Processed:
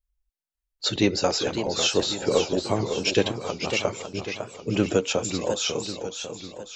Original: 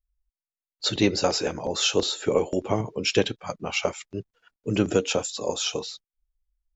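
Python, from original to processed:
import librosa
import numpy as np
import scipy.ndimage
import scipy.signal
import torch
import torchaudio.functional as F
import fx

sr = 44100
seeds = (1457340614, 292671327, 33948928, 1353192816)

y = fx.echo_warbled(x, sr, ms=548, feedback_pct=51, rate_hz=2.8, cents=179, wet_db=-8.0)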